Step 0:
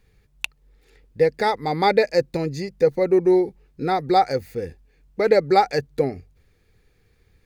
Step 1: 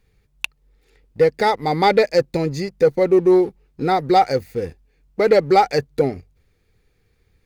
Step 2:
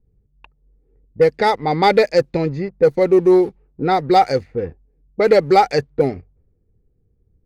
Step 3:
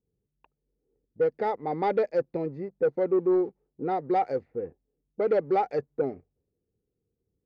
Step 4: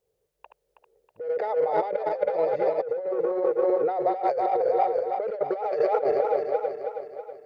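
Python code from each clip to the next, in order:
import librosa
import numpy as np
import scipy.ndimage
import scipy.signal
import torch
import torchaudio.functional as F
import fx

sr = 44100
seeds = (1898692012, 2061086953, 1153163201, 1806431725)

y1 = fx.notch(x, sr, hz=1700.0, q=26.0)
y1 = fx.leveller(y1, sr, passes=1)
y2 = fx.env_lowpass(y1, sr, base_hz=350.0, full_db=-12.5)
y2 = y2 * librosa.db_to_amplitude(1.5)
y3 = fx.bandpass_q(y2, sr, hz=450.0, q=0.7)
y3 = 10.0 ** (-6.5 / 20.0) * np.tanh(y3 / 10.0 ** (-6.5 / 20.0))
y3 = y3 * librosa.db_to_amplitude(-9.0)
y4 = fx.reverse_delay_fb(y3, sr, ms=161, feedback_pct=71, wet_db=-7)
y4 = fx.low_shelf_res(y4, sr, hz=370.0, db=-14.0, q=3.0)
y4 = fx.over_compress(y4, sr, threshold_db=-30.0, ratio=-1.0)
y4 = y4 * librosa.db_to_amplitude(4.5)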